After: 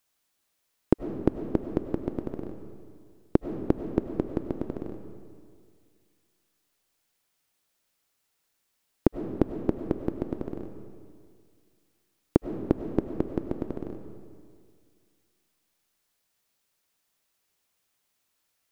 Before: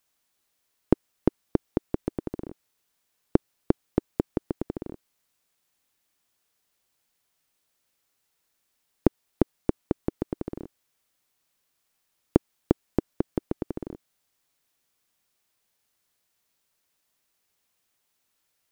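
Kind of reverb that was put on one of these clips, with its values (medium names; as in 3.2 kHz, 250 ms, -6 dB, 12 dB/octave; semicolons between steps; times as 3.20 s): algorithmic reverb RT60 2.1 s, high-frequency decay 0.75×, pre-delay 60 ms, DRR 7 dB; trim -1 dB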